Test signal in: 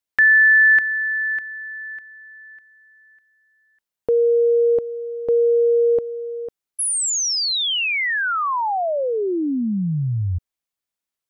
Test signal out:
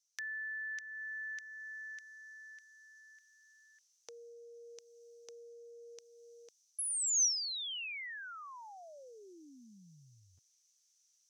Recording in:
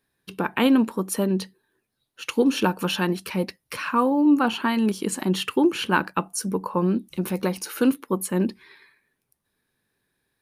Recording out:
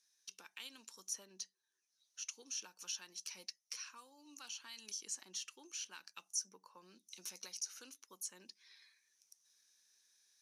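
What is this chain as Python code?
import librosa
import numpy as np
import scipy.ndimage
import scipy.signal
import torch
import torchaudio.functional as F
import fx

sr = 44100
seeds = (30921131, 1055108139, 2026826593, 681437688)

y = fx.rider(x, sr, range_db=4, speed_s=0.5)
y = fx.bandpass_q(y, sr, hz=6000.0, q=9.5)
y = fx.band_squash(y, sr, depth_pct=70)
y = y * librosa.db_to_amplitude(2.5)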